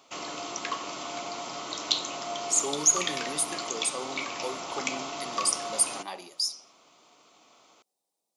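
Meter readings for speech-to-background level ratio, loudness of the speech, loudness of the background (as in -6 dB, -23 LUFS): 5.5 dB, -27.5 LUFS, -33.0 LUFS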